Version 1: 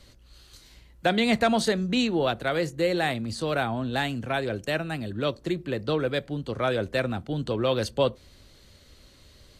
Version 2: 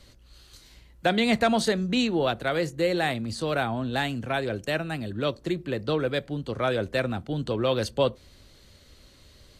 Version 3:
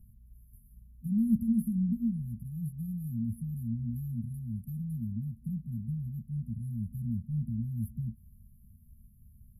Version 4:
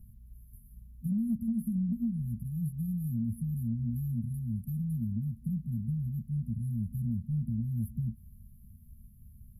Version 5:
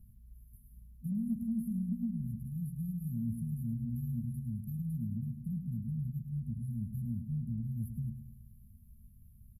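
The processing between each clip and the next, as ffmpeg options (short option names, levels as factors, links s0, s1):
-af anull
-af "afftfilt=real='re*(1-between(b*sr/4096,240,10000))':imag='im*(1-between(b*sr/4096,240,10000))':win_size=4096:overlap=0.75"
-af "acompressor=threshold=0.0282:ratio=10,volume=1.5"
-af "aecho=1:1:105|210|315|420|525|630:0.335|0.181|0.0977|0.0527|0.0285|0.0154,volume=0.596"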